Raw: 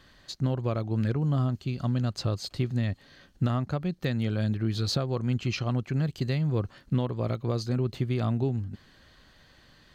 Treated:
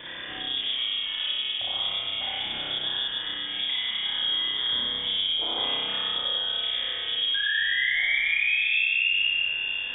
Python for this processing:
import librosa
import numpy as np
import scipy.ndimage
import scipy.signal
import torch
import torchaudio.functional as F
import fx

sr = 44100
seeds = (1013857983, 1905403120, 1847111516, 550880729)

p1 = fx.spec_quant(x, sr, step_db=15)
p2 = fx.low_shelf(p1, sr, hz=330.0, db=-6.5)
p3 = fx.hum_notches(p2, sr, base_hz=50, count=3)
p4 = fx.over_compress(p3, sr, threshold_db=-37.0, ratio=-0.5)
p5 = fx.rotary_switch(p4, sr, hz=8.0, then_hz=1.2, switch_at_s=5.33)
p6 = fx.spec_paint(p5, sr, seeds[0], shape='fall', start_s=7.34, length_s=1.86, low_hz=630.0, high_hz=1900.0, level_db=-32.0)
p7 = p6 + fx.room_flutter(p6, sr, wall_m=5.3, rt60_s=1.2, dry=0)
p8 = fx.rev_spring(p7, sr, rt60_s=2.2, pass_ms=(49, 53), chirp_ms=70, drr_db=-6.0)
p9 = fx.freq_invert(p8, sr, carrier_hz=3500)
p10 = fx.band_squash(p9, sr, depth_pct=70)
y = p10 * librosa.db_to_amplitude(-2.5)